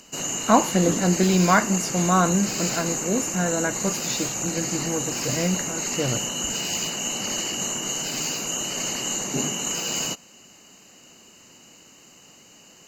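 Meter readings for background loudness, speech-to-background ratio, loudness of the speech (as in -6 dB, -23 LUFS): -25.5 LUFS, 1.5 dB, -24.0 LUFS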